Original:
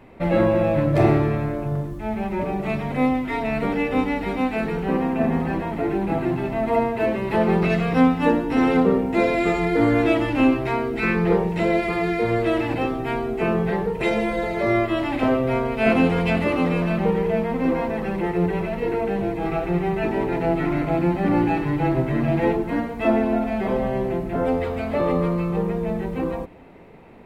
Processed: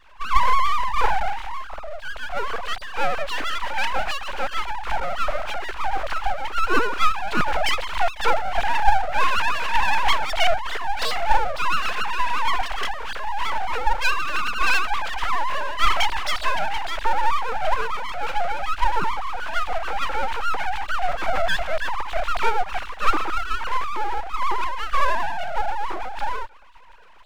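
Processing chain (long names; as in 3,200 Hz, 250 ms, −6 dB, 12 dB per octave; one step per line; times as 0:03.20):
three sine waves on the formant tracks
pitch vibrato 11 Hz 87 cents
full-wave rectification
level +2.5 dB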